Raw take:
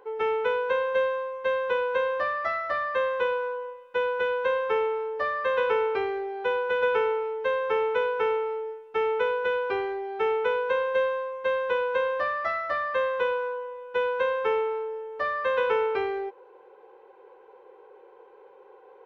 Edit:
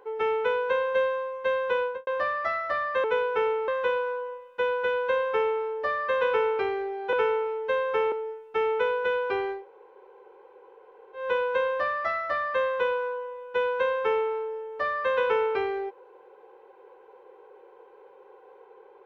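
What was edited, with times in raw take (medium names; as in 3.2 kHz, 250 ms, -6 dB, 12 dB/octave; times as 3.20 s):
1.81–2.07 s: studio fade out
6.49–6.89 s: delete
7.88–8.52 s: move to 3.04 s
9.98–11.61 s: room tone, crossfade 0.16 s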